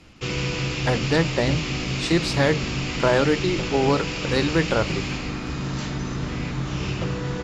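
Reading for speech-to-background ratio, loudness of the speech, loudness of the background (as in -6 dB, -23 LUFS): 3.0 dB, -24.0 LUFS, -27.0 LUFS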